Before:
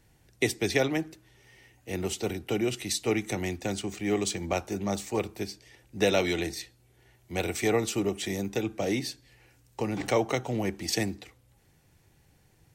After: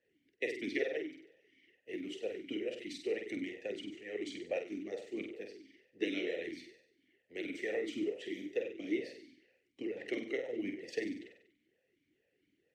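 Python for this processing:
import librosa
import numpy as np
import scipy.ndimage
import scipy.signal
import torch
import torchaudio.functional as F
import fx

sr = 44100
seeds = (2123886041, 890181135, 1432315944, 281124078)

y = fx.room_flutter(x, sr, wall_m=8.2, rt60_s=0.74)
y = fx.hpss(y, sr, part='harmonic', gain_db=-14)
y = fx.vowel_sweep(y, sr, vowels='e-i', hz=2.2)
y = y * librosa.db_to_amplitude(3.5)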